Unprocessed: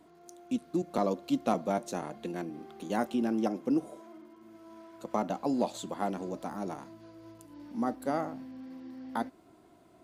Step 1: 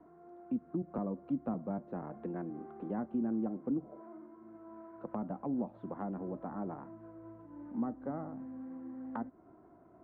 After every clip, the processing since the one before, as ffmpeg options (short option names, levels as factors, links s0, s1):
-filter_complex "[0:a]lowpass=f=1500:w=0.5412,lowpass=f=1500:w=1.3066,acrossover=split=240[s0][s1];[s1]acompressor=threshold=0.0112:ratio=10[s2];[s0][s2]amix=inputs=2:normalize=0"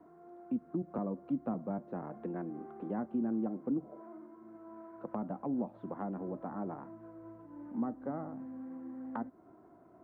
-af "lowshelf=f=61:g=-11,volume=1.12"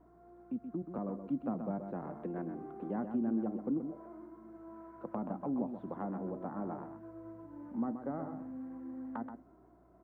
-af "dynaudnorm=f=190:g=11:m=1.58,aeval=exprs='val(0)+0.000708*(sin(2*PI*60*n/s)+sin(2*PI*2*60*n/s)/2+sin(2*PI*3*60*n/s)/3+sin(2*PI*4*60*n/s)/4+sin(2*PI*5*60*n/s)/5)':c=same,aecho=1:1:128:0.398,volume=0.596"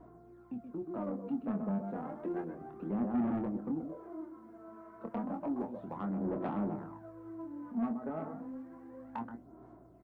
-filter_complex "[0:a]aphaser=in_gain=1:out_gain=1:delay=4.7:decay=0.57:speed=0.31:type=sinusoidal,asoftclip=type=tanh:threshold=0.0335,asplit=2[s0][s1];[s1]adelay=25,volume=0.473[s2];[s0][s2]amix=inputs=2:normalize=0"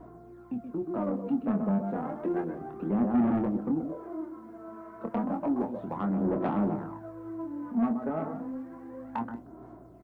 -filter_complex "[0:a]asplit=2[s0][s1];[s1]adelay=180,highpass=300,lowpass=3400,asoftclip=type=hard:threshold=0.02,volume=0.0708[s2];[s0][s2]amix=inputs=2:normalize=0,volume=2.24"